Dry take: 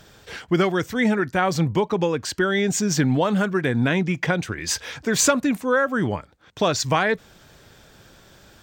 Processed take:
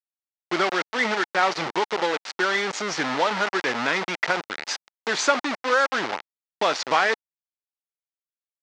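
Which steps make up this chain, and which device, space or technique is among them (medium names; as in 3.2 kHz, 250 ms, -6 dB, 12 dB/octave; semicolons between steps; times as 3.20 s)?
hand-held game console (bit crusher 4-bit; cabinet simulation 410–5500 Hz, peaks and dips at 860 Hz +5 dB, 1.3 kHz +4 dB, 2 kHz +4 dB); trim -2 dB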